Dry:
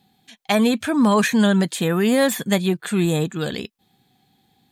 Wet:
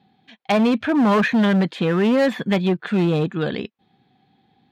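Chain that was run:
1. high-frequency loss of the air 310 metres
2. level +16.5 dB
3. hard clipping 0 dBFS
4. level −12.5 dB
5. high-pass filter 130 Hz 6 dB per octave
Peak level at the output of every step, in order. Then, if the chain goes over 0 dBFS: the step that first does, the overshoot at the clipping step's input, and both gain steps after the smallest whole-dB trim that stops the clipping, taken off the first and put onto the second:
−8.0, +8.5, 0.0, −12.5, −9.5 dBFS
step 2, 8.5 dB
step 2 +7.5 dB, step 4 −3.5 dB

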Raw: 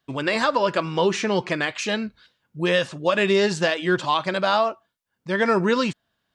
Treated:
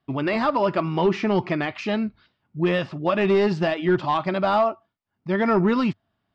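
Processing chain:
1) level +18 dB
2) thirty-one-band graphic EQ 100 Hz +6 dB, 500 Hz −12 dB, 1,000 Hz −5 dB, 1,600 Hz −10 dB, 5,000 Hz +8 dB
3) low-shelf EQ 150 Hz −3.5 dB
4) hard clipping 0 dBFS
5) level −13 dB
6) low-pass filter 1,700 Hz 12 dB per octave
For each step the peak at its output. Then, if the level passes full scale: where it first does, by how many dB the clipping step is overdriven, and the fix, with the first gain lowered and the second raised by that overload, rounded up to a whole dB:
+10.0, +8.0, +8.0, 0.0, −13.0, −12.5 dBFS
step 1, 8.0 dB
step 1 +10 dB, step 5 −5 dB

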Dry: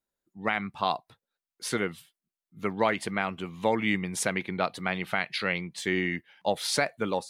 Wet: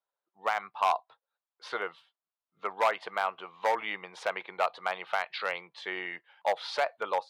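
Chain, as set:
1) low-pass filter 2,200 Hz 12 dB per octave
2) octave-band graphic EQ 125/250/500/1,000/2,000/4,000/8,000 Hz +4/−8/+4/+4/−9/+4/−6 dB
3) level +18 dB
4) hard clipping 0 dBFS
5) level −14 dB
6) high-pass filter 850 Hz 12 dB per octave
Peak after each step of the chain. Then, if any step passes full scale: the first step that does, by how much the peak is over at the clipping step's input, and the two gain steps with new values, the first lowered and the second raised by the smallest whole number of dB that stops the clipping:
−11.5, −10.0, +8.0, 0.0, −14.0, −12.5 dBFS
step 3, 8.0 dB
step 3 +10 dB, step 5 −6 dB

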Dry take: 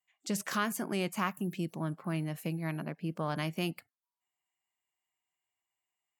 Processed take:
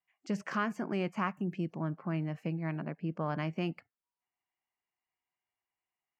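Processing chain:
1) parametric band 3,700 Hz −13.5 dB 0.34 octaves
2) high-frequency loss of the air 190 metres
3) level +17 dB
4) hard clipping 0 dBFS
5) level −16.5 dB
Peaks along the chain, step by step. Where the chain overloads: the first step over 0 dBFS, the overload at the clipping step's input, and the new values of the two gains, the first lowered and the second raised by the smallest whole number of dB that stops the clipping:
−17.5, −19.0, −2.0, −2.0, −18.5 dBFS
no step passes full scale

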